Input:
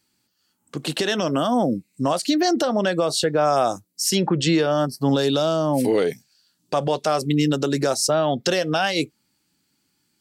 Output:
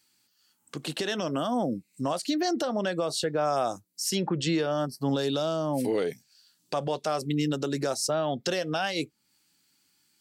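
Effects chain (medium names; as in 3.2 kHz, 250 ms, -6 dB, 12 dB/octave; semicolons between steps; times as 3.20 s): tape noise reduction on one side only encoder only; trim -7.5 dB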